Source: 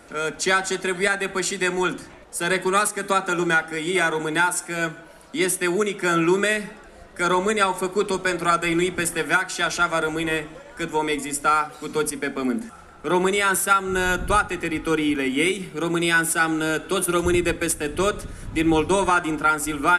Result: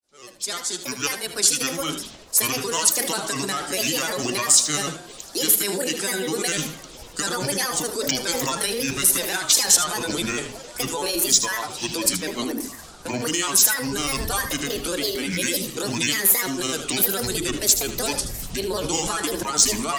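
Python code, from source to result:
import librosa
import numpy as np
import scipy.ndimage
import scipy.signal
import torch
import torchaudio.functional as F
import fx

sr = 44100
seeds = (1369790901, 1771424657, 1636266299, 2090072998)

p1 = fx.fade_in_head(x, sr, length_s=2.95)
p2 = fx.hum_notches(p1, sr, base_hz=50, count=8)
p3 = fx.over_compress(p2, sr, threshold_db=-27.0, ratio=-0.5)
p4 = p2 + (p3 * librosa.db_to_amplitude(1.5))
p5 = fx.high_shelf_res(p4, sr, hz=3100.0, db=13.0, q=1.5)
p6 = fx.granulator(p5, sr, seeds[0], grain_ms=100.0, per_s=20.0, spray_ms=14.0, spread_st=7)
p7 = p6 + fx.echo_single(p6, sr, ms=77, db=-10.5, dry=0)
y = p7 * librosa.db_to_amplitude(-7.0)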